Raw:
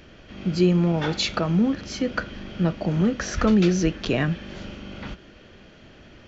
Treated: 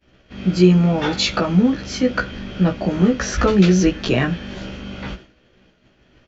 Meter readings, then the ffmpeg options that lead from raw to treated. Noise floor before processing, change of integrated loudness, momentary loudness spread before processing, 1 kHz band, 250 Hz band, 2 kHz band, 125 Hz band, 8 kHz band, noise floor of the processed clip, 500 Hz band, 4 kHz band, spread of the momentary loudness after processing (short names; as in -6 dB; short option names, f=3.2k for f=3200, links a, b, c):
-49 dBFS, +5.5 dB, 18 LU, +5.5 dB, +5.0 dB, +5.5 dB, +5.5 dB, n/a, -58 dBFS, +5.5 dB, +5.5 dB, 18 LU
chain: -filter_complex "[0:a]asplit=2[a][b];[b]adelay=16,volume=-2dB[c];[a][c]amix=inputs=2:normalize=0,agate=range=-33dB:threshold=-36dB:ratio=3:detection=peak,volume=3.5dB"